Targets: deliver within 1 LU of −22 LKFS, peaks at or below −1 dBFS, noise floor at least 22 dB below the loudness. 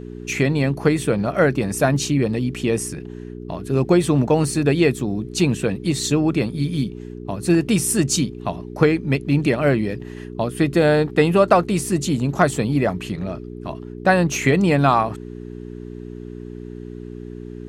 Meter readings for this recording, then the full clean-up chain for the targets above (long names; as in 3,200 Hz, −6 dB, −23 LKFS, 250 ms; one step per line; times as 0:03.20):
mains hum 60 Hz; hum harmonics up to 420 Hz; level of the hum −32 dBFS; integrated loudness −19.5 LKFS; sample peak −2.5 dBFS; target loudness −22.0 LKFS
→ hum removal 60 Hz, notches 7
level −2.5 dB